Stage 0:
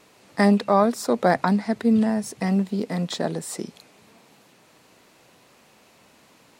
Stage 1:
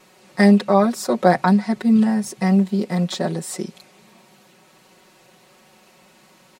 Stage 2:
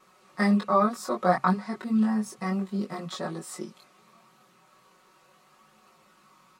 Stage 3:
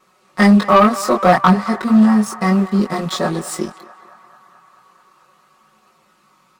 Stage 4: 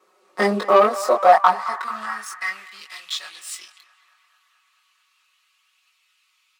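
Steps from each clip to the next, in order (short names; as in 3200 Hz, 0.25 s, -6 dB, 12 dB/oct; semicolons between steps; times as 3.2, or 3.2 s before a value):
comb 5.4 ms, depth 96%
bell 1200 Hz +14.5 dB 0.38 oct; chorus voices 2, 0.34 Hz, delay 21 ms, depth 2.4 ms; gain -7 dB
sample leveller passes 2; narrowing echo 0.218 s, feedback 81%, band-pass 1200 Hz, level -15 dB; gain +6.5 dB
high-pass sweep 400 Hz -> 2700 Hz, 0.69–2.9; gain -6 dB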